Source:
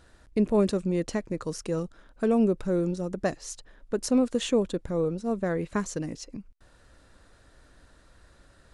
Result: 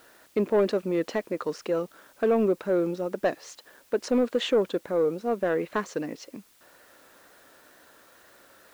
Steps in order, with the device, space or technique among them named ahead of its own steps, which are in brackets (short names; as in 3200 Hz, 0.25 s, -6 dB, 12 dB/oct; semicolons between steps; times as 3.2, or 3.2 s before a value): tape answering machine (BPF 360–3300 Hz; soft clip -20 dBFS, distortion -18 dB; wow and flutter; white noise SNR 32 dB); gain +6 dB